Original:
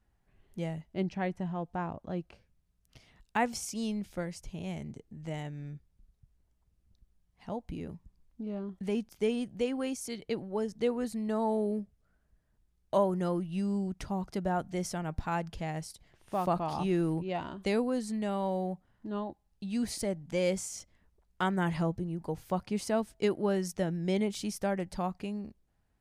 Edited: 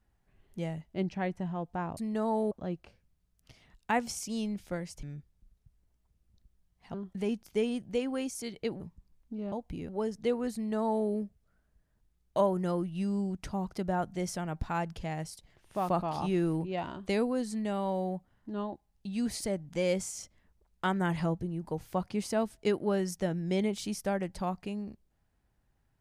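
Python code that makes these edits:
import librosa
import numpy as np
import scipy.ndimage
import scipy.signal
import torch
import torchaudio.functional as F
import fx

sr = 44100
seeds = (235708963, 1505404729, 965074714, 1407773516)

y = fx.edit(x, sr, fx.cut(start_s=4.49, length_s=1.11),
    fx.swap(start_s=7.51, length_s=0.37, other_s=8.6, other_length_s=1.86),
    fx.duplicate(start_s=11.11, length_s=0.54, to_s=1.97), tone=tone)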